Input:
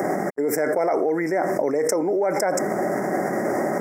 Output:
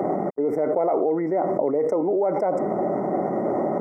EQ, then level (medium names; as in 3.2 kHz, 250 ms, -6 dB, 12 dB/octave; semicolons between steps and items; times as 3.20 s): Savitzky-Golay filter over 65 samples; 0.0 dB